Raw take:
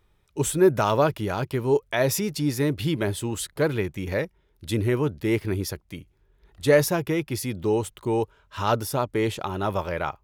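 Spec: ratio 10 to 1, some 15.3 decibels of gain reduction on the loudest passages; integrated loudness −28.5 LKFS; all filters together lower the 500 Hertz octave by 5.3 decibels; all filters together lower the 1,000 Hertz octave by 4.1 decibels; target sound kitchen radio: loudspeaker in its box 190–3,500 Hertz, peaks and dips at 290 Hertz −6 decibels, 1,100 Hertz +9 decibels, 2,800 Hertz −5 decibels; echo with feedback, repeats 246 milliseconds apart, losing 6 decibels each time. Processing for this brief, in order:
parametric band 500 Hz −4 dB
parametric band 1,000 Hz −9 dB
downward compressor 10 to 1, threshold −32 dBFS
loudspeaker in its box 190–3,500 Hz, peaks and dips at 290 Hz −6 dB, 1,100 Hz +9 dB, 2,800 Hz −5 dB
repeating echo 246 ms, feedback 50%, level −6 dB
level +10.5 dB

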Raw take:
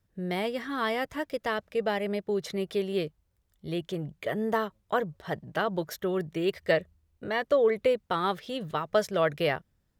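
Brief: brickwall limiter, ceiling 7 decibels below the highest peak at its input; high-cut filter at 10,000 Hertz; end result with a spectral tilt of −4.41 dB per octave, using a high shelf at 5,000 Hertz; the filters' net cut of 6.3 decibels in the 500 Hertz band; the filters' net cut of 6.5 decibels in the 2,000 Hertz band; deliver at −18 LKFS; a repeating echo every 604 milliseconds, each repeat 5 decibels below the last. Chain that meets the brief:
low-pass filter 10,000 Hz
parametric band 500 Hz −7.5 dB
parametric band 2,000 Hz −8.5 dB
high-shelf EQ 5,000 Hz +5.5 dB
brickwall limiter −23.5 dBFS
repeating echo 604 ms, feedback 56%, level −5 dB
level +16.5 dB

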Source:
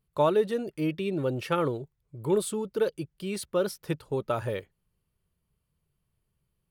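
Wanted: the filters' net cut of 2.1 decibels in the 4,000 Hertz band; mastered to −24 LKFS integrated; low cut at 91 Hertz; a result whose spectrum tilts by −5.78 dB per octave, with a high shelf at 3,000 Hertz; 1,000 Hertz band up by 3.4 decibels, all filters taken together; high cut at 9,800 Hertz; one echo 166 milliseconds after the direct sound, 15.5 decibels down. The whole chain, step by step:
high-pass filter 91 Hz
low-pass filter 9,800 Hz
parametric band 1,000 Hz +4 dB
high-shelf EQ 3,000 Hz +4 dB
parametric band 4,000 Hz −6 dB
single-tap delay 166 ms −15.5 dB
level +5 dB

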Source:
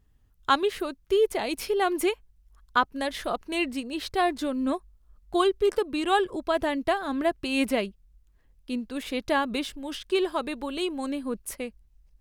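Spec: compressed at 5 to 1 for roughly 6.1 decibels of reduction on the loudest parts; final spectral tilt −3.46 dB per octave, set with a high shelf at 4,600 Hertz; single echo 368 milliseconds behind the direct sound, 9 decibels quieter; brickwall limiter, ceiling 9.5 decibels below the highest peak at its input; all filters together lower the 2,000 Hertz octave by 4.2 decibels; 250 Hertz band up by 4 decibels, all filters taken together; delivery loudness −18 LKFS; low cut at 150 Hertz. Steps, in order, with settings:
high-pass filter 150 Hz
parametric band 250 Hz +5.5 dB
parametric band 2,000 Hz −7 dB
high-shelf EQ 4,600 Hz +4.5 dB
downward compressor 5 to 1, threshold −24 dBFS
brickwall limiter −23 dBFS
single-tap delay 368 ms −9 dB
level +14 dB

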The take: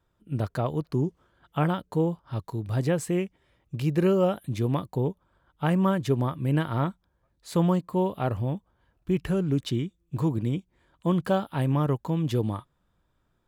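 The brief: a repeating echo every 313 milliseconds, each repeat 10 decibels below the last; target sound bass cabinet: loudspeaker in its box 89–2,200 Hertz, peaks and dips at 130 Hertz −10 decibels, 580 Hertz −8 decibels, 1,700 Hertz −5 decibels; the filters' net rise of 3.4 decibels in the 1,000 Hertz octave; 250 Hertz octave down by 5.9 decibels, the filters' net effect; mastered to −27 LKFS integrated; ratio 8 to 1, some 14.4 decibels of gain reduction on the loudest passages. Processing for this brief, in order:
parametric band 250 Hz −8 dB
parametric band 1,000 Hz +6 dB
downward compressor 8 to 1, threshold −35 dBFS
loudspeaker in its box 89–2,200 Hz, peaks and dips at 130 Hz −10 dB, 580 Hz −8 dB, 1,700 Hz −5 dB
repeating echo 313 ms, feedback 32%, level −10 dB
level +16 dB

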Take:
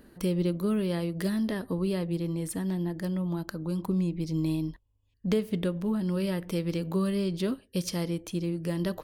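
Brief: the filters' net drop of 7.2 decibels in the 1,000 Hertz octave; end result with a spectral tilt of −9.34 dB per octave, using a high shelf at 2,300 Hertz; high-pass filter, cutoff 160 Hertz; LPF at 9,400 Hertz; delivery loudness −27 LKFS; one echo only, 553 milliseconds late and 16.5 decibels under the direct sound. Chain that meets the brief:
high-pass filter 160 Hz
low-pass filter 9,400 Hz
parametric band 1,000 Hz −7.5 dB
high-shelf EQ 2,300 Hz −8.5 dB
single-tap delay 553 ms −16.5 dB
level +5.5 dB

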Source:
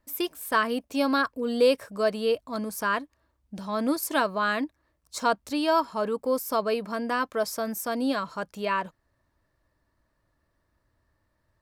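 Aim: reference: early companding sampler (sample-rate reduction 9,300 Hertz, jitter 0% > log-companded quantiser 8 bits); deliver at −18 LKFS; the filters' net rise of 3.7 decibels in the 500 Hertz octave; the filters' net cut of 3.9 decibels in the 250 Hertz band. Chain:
parametric band 250 Hz −6 dB
parametric band 500 Hz +5.5 dB
sample-rate reduction 9,300 Hz, jitter 0%
log-companded quantiser 8 bits
level +7.5 dB

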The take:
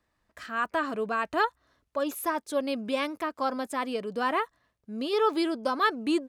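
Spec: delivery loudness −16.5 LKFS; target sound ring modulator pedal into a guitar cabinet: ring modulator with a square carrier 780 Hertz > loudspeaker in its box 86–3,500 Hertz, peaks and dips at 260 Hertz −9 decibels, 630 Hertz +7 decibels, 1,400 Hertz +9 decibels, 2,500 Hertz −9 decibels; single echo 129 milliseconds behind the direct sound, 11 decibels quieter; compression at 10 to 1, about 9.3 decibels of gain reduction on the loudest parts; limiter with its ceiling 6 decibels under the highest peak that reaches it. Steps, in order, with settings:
downward compressor 10 to 1, threshold −29 dBFS
brickwall limiter −26.5 dBFS
single-tap delay 129 ms −11 dB
ring modulator with a square carrier 780 Hz
loudspeaker in its box 86–3,500 Hz, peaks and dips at 260 Hz −9 dB, 630 Hz +7 dB, 1,400 Hz +9 dB, 2,500 Hz −9 dB
level +17.5 dB

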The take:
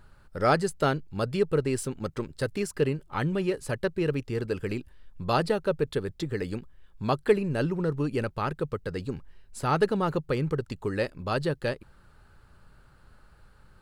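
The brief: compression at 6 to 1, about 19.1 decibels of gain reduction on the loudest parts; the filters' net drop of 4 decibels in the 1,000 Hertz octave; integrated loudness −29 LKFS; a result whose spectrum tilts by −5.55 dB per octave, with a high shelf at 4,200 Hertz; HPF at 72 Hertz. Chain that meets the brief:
high-pass filter 72 Hz
parametric band 1,000 Hz −6 dB
high-shelf EQ 4,200 Hz +3 dB
downward compressor 6 to 1, threshold −38 dBFS
level +13.5 dB

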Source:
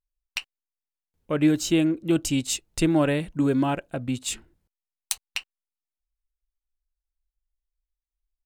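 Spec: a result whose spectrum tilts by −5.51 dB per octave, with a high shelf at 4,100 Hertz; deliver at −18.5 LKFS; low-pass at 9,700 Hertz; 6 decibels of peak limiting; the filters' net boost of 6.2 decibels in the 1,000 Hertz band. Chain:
low-pass filter 9,700 Hz
parametric band 1,000 Hz +8.5 dB
high-shelf EQ 4,100 Hz −5.5 dB
level +6.5 dB
brickwall limiter −7.5 dBFS

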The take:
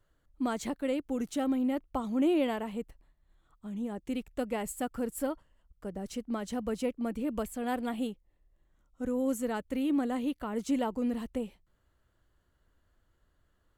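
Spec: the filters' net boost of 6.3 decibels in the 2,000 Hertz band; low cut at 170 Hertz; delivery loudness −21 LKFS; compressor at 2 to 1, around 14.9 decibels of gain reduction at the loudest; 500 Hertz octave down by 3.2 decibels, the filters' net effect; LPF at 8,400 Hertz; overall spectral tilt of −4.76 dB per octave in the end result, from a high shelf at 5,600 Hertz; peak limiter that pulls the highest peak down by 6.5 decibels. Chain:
high-pass filter 170 Hz
low-pass filter 8,400 Hz
parametric band 500 Hz −4 dB
parametric band 2,000 Hz +9 dB
high-shelf EQ 5,600 Hz −7 dB
downward compressor 2 to 1, threshold −54 dBFS
level +28 dB
brickwall limiter −12 dBFS

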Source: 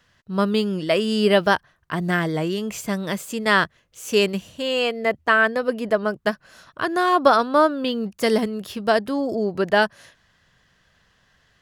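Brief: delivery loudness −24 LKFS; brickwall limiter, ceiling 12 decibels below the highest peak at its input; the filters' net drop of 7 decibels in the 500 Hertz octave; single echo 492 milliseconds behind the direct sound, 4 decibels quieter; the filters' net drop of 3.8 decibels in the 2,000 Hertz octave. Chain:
parametric band 500 Hz −9 dB
parametric band 2,000 Hz −4.5 dB
brickwall limiter −19.5 dBFS
single-tap delay 492 ms −4 dB
level +4.5 dB

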